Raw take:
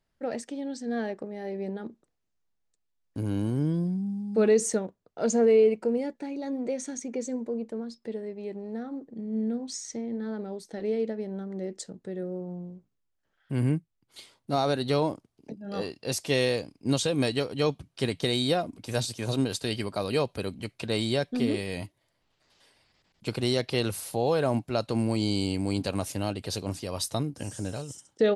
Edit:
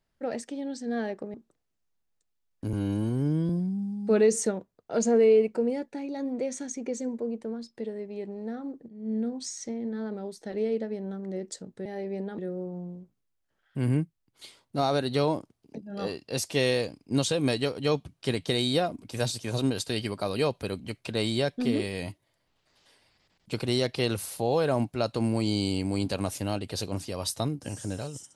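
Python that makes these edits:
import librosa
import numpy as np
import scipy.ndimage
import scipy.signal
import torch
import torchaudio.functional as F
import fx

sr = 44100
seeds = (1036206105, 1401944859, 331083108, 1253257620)

y = fx.edit(x, sr, fx.move(start_s=1.34, length_s=0.53, to_s=12.13),
    fx.stretch_span(start_s=3.26, length_s=0.51, factor=1.5),
    fx.fade_in_from(start_s=9.16, length_s=0.28, floor_db=-18.5), tone=tone)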